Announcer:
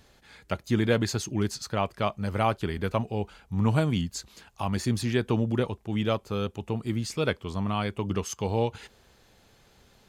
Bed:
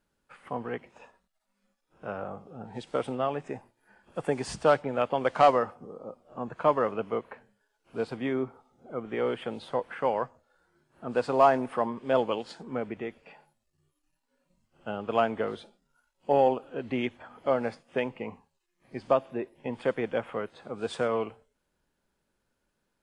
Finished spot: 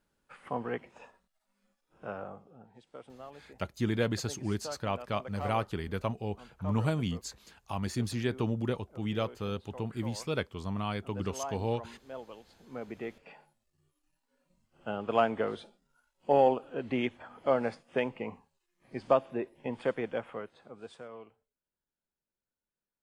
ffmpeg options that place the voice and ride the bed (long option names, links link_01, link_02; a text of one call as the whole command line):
ffmpeg -i stem1.wav -i stem2.wav -filter_complex "[0:a]adelay=3100,volume=-5.5dB[link_01];[1:a]volume=17dB,afade=type=out:start_time=1.8:duration=0.94:silence=0.125893,afade=type=in:start_time=12.57:duration=0.64:silence=0.133352,afade=type=out:start_time=19.55:duration=1.48:silence=0.133352[link_02];[link_01][link_02]amix=inputs=2:normalize=0" out.wav